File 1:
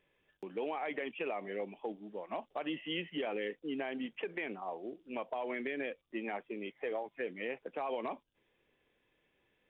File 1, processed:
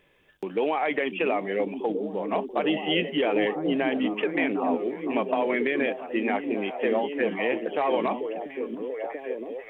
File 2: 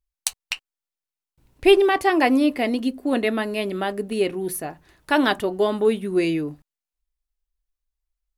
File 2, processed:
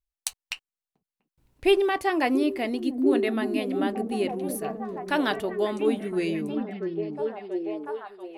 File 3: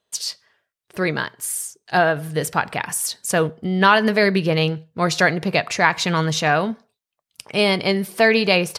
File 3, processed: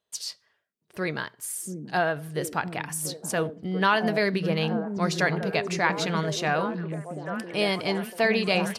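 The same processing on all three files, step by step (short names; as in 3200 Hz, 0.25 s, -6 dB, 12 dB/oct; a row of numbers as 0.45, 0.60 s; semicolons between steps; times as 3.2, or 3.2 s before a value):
on a send: delay with a stepping band-pass 0.688 s, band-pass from 220 Hz, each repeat 0.7 oct, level -1 dB; on the sum: match loudness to -27 LUFS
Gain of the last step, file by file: +12.0, -6.0, -8.0 dB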